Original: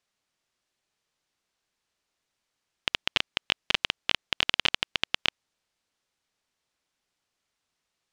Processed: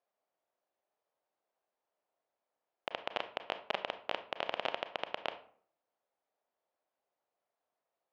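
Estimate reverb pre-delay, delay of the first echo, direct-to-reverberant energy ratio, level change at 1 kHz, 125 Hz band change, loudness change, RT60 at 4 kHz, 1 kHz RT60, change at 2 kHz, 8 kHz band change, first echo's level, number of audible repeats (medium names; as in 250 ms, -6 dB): 28 ms, no echo, 9.5 dB, -1.0 dB, -15.0 dB, -11.5 dB, 0.30 s, 0.50 s, -12.0 dB, under -20 dB, no echo, no echo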